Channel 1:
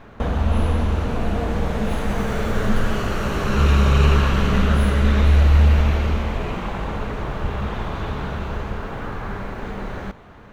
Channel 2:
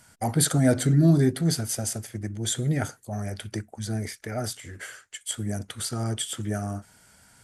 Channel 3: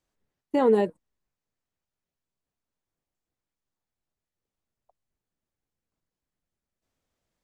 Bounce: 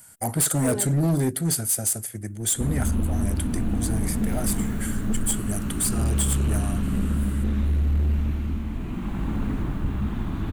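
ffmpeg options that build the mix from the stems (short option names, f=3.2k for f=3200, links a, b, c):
-filter_complex "[0:a]lowshelf=f=370:t=q:w=3:g=8.5,dynaudnorm=f=310:g=3:m=11.5dB,adelay=2400,volume=-12dB[a];[1:a]highshelf=f=9.3k:g=3.5,volume=-1dB[b];[2:a]volume=-10dB[c];[a][b][c]amix=inputs=3:normalize=0,aexciter=amount=3.6:drive=5.7:freq=7.6k,volume=18dB,asoftclip=hard,volume=-18dB"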